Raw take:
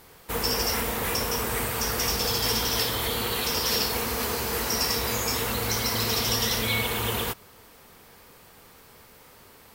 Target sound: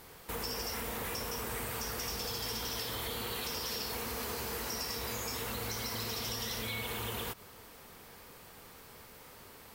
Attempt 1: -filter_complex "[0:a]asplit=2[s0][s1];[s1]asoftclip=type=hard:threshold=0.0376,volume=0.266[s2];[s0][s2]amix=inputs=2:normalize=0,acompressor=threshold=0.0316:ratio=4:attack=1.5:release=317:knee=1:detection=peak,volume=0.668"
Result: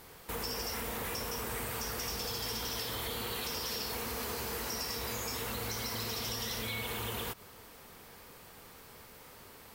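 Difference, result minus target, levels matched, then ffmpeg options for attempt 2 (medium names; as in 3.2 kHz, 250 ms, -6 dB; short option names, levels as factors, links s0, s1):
hard clipper: distortion -4 dB
-filter_complex "[0:a]asplit=2[s0][s1];[s1]asoftclip=type=hard:threshold=0.0119,volume=0.266[s2];[s0][s2]amix=inputs=2:normalize=0,acompressor=threshold=0.0316:ratio=4:attack=1.5:release=317:knee=1:detection=peak,volume=0.668"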